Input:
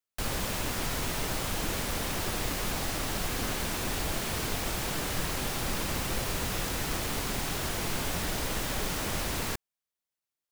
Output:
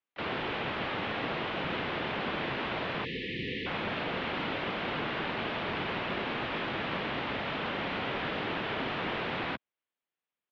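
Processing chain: harmony voices -5 st -14 dB, +5 st -13 dB; mistuned SSB -150 Hz 300–3500 Hz; spectral selection erased 3.05–3.66 s, 520–1700 Hz; trim +2.5 dB

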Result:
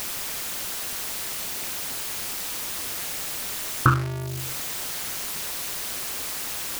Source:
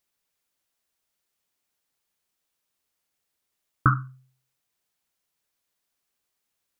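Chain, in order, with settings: jump at every zero crossing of -26 dBFS; AM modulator 210 Hz, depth 45%; trim +4 dB

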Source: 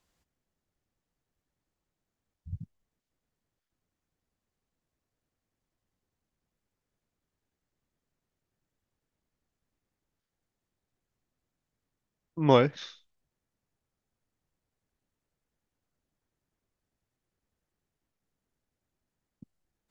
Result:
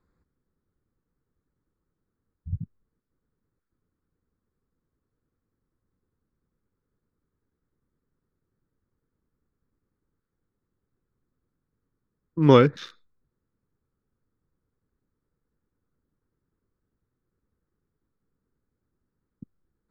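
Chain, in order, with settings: local Wiener filter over 15 samples; FFT filter 470 Hz 0 dB, 670 Hz -13 dB, 1.3 kHz +1 dB, 1.9 kHz -4 dB; trim +7.5 dB

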